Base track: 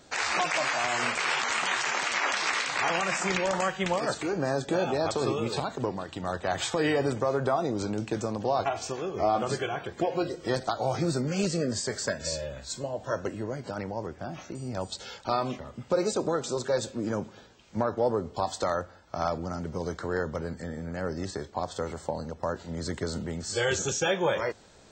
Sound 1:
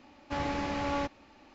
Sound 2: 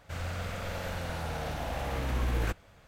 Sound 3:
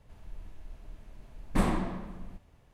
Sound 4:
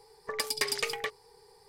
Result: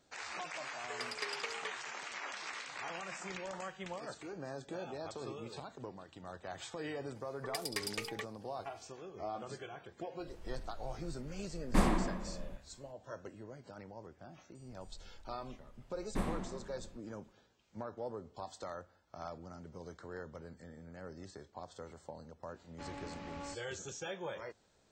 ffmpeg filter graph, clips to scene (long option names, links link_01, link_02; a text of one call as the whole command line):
ffmpeg -i bed.wav -i cue0.wav -i cue1.wav -i cue2.wav -i cue3.wav -filter_complex "[4:a]asplit=2[link_01][link_02];[3:a]asplit=2[link_03][link_04];[0:a]volume=-16dB[link_05];[link_01]highpass=280,lowpass=5200[link_06];[link_03]equalizer=frequency=110:width_type=o:width=0.77:gain=-8[link_07];[link_06]atrim=end=1.68,asetpts=PTS-STARTPTS,volume=-9.5dB,afade=type=in:duration=0.004:curve=hsin,afade=type=out:start_time=1.676:duration=0.004:curve=hsin,adelay=610[link_08];[link_02]atrim=end=1.68,asetpts=PTS-STARTPTS,volume=-9dB,afade=type=in:duration=0.004:curve=hsin,afade=type=out:start_time=1.676:duration=0.004:curve=hsin,adelay=7150[link_09];[link_07]atrim=end=2.73,asetpts=PTS-STARTPTS,volume=-1dB,afade=type=in:duration=0.004:curve=hsin,afade=type=out:start_time=2.726:duration=0.004:curve=hsin,adelay=10190[link_10];[link_04]atrim=end=2.73,asetpts=PTS-STARTPTS,volume=-10dB,afade=type=in:duration=0.004:curve=hsin,afade=type=out:start_time=2.726:duration=0.004:curve=hsin,adelay=643860S[link_11];[1:a]atrim=end=1.54,asetpts=PTS-STARTPTS,volume=-14.5dB,afade=type=in:duration=0.004:curve=hsin,afade=type=out:start_time=1.536:duration=0.004:curve=hsin,adelay=22480[link_12];[link_05][link_08][link_09][link_10][link_11][link_12]amix=inputs=6:normalize=0" out.wav